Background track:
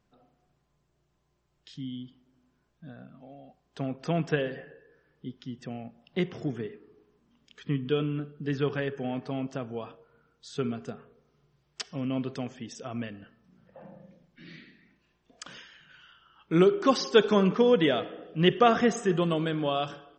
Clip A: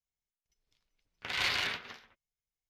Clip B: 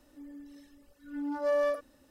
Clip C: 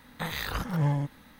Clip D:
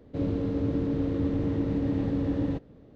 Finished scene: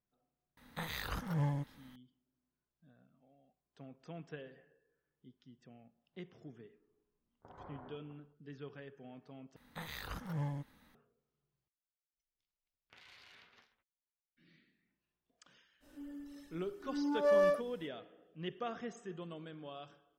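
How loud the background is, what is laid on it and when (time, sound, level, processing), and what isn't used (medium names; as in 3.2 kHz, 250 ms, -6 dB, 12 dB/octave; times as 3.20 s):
background track -20 dB
0.57 s: add C -8 dB
6.20 s: add A -9 dB + inverse Chebyshev low-pass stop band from 2.5 kHz, stop band 50 dB
9.56 s: replace with C -12 dB
11.68 s: replace with A -17.5 dB + compression 10:1, threshold -38 dBFS
15.80 s: add B -0.5 dB, fades 0.05 s
not used: D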